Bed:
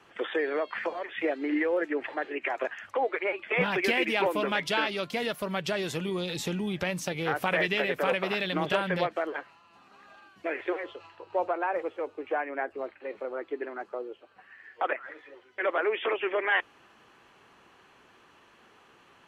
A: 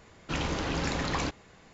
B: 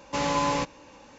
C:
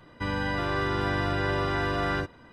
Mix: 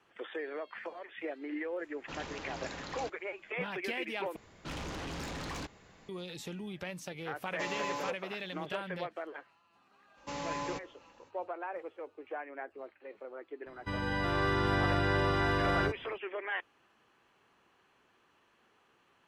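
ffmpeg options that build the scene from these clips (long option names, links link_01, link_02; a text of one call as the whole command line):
ffmpeg -i bed.wav -i cue0.wav -i cue1.wav -i cue2.wav -filter_complex "[1:a]asplit=2[link_01][link_02];[2:a]asplit=2[link_03][link_04];[0:a]volume=-10.5dB[link_05];[link_01]lowshelf=frequency=200:gain=-8[link_06];[link_02]asoftclip=type=tanh:threshold=-33.5dB[link_07];[link_03]highpass=frequency=280:poles=1[link_08];[3:a]dynaudnorm=framelen=340:gausssize=3:maxgain=4.5dB[link_09];[link_05]asplit=2[link_10][link_11];[link_10]atrim=end=4.364[link_12];[link_07]atrim=end=1.73,asetpts=PTS-STARTPTS,volume=-3.5dB[link_13];[link_11]atrim=start=6.086[link_14];[link_06]atrim=end=1.73,asetpts=PTS-STARTPTS,volume=-10.5dB,afade=type=in:duration=0.004:curve=hsin,afade=type=out:start_time=1.726:duration=0.004:curve=hsin,adelay=1790[link_15];[link_08]atrim=end=1.18,asetpts=PTS-STARTPTS,volume=-11.5dB,afade=type=in:duration=0.004:curve=hsin,afade=type=out:start_time=1.176:duration=0.004:curve=hsin,adelay=328986S[link_16];[link_04]atrim=end=1.18,asetpts=PTS-STARTPTS,volume=-12.5dB,afade=type=in:duration=0.05,afade=type=out:start_time=1.13:duration=0.05,adelay=10140[link_17];[link_09]atrim=end=2.52,asetpts=PTS-STARTPTS,volume=-6.5dB,afade=type=in:duration=0.004:curve=hsin,afade=type=out:start_time=2.516:duration=0.004:curve=hsin,adelay=13660[link_18];[link_12][link_13]acrossfade=duration=0.004:curve1=hsin:curve2=hsin[link_19];[link_19][link_14]acrossfade=duration=0.004:curve1=hsin:curve2=hsin[link_20];[link_20][link_15][link_16][link_17][link_18]amix=inputs=5:normalize=0" out.wav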